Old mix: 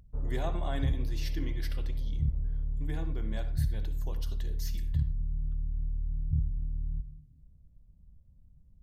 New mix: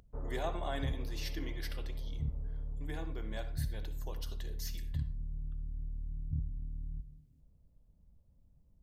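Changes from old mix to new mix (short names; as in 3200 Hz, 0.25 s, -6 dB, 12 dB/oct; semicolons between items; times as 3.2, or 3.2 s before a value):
background +4.5 dB; master: add tone controls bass -12 dB, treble 0 dB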